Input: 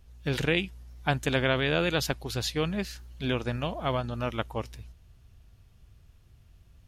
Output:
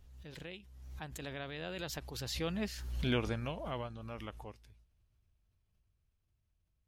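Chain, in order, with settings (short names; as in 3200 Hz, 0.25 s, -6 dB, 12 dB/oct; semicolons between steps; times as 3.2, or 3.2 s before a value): Doppler pass-by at 2.95, 21 m/s, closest 5.5 m; backwards sustainer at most 43 dB/s; gain -2 dB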